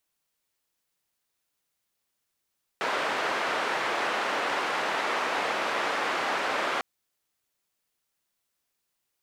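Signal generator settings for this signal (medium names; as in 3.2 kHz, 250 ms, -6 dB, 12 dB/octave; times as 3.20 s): noise band 420–1600 Hz, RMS -28.5 dBFS 4.00 s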